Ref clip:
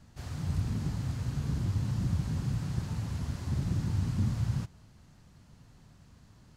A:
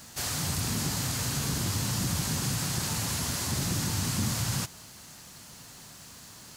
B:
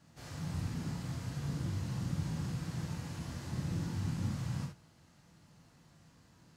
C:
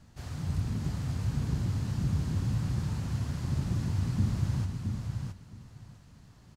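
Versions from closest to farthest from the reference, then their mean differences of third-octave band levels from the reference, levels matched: C, B, A; 2.5, 4.0, 11.0 dB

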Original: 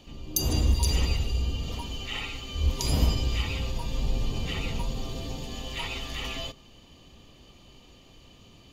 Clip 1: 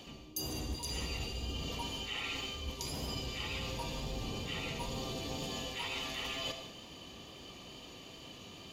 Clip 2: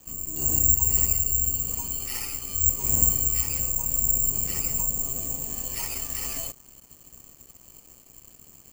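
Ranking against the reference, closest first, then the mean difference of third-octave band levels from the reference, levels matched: 1, 2; 5.5, 12.5 dB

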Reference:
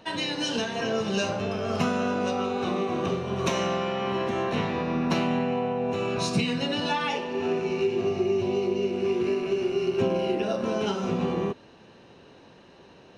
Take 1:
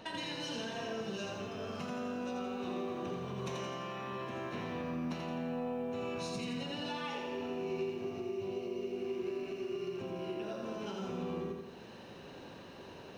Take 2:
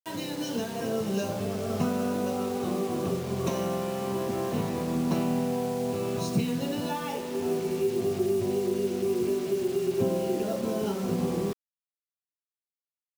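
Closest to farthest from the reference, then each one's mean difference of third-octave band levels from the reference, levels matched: 1, 2; 4.0, 7.0 dB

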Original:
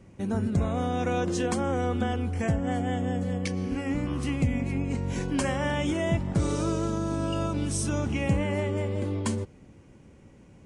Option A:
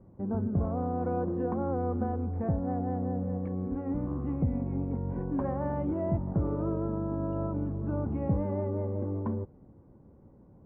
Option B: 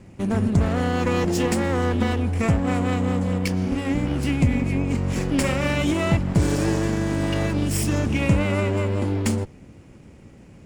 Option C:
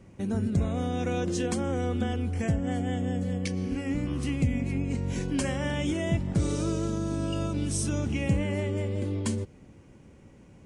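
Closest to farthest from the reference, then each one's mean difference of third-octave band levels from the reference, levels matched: C, B, A; 1.5, 2.5, 8.0 dB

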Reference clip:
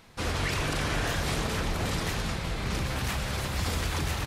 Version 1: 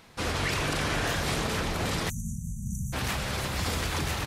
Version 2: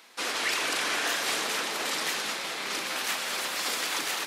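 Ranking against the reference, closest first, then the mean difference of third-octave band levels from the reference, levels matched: 1, 2; 5.0, 8.0 dB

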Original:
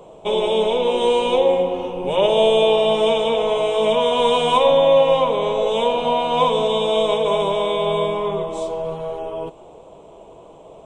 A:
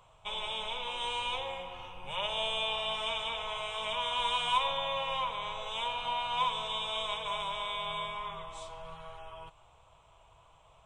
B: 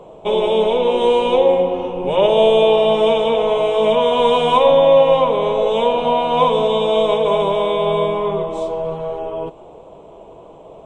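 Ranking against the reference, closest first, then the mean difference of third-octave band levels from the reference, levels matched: B, A; 1.5, 7.5 dB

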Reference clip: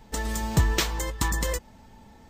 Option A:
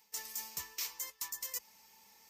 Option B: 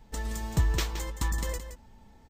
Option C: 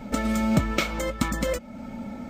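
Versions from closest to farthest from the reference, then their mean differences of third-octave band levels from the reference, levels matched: B, C, A; 2.5, 5.5, 12.0 dB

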